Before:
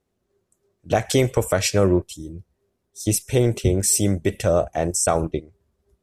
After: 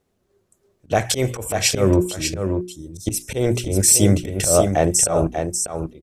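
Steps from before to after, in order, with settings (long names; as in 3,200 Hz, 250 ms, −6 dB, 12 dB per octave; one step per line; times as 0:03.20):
volume swells 156 ms
mains-hum notches 60/120/180/240/300/360 Hz
single-tap delay 592 ms −6.5 dB
level +5.5 dB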